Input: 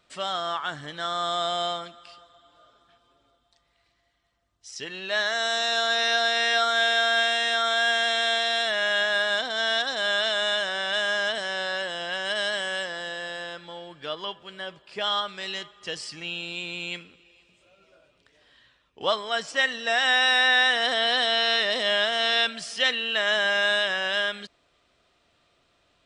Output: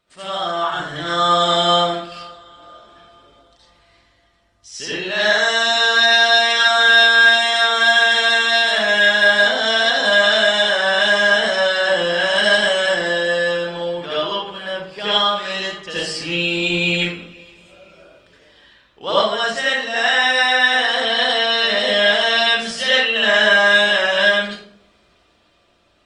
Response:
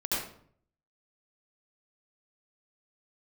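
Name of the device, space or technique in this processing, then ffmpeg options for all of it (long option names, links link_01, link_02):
speakerphone in a meeting room: -filter_complex "[1:a]atrim=start_sample=2205[link_01];[0:a][link_01]afir=irnorm=-1:irlink=0,dynaudnorm=framelen=200:gausssize=11:maxgain=8.5dB,volume=-1dB" -ar 48000 -c:a libopus -b:a 32k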